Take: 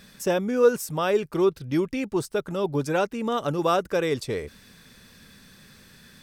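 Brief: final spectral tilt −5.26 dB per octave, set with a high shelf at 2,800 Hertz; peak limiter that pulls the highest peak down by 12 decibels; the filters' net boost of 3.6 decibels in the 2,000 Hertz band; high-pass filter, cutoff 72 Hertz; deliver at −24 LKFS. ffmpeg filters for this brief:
ffmpeg -i in.wav -af "highpass=72,equalizer=frequency=2000:width_type=o:gain=7.5,highshelf=frequency=2800:gain=-6,volume=5dB,alimiter=limit=-14.5dB:level=0:latency=1" out.wav

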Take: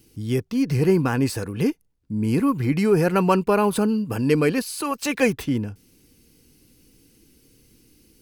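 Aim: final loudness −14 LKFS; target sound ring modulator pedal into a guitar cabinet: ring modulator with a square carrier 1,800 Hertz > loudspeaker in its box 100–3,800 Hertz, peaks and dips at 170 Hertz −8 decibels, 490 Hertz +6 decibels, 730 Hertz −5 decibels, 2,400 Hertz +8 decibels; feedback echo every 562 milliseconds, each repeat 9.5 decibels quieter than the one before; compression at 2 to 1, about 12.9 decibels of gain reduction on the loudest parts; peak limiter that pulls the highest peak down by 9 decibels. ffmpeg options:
ffmpeg -i in.wav -af "acompressor=threshold=-38dB:ratio=2,alimiter=level_in=3.5dB:limit=-24dB:level=0:latency=1,volume=-3.5dB,aecho=1:1:562|1124|1686|2248:0.335|0.111|0.0365|0.012,aeval=exprs='val(0)*sgn(sin(2*PI*1800*n/s))':channel_layout=same,highpass=100,equalizer=frequency=170:width_type=q:width=4:gain=-8,equalizer=frequency=490:width_type=q:width=4:gain=6,equalizer=frequency=730:width_type=q:width=4:gain=-5,equalizer=frequency=2400:width_type=q:width=4:gain=8,lowpass=frequency=3800:width=0.5412,lowpass=frequency=3800:width=1.3066,volume=18dB" out.wav

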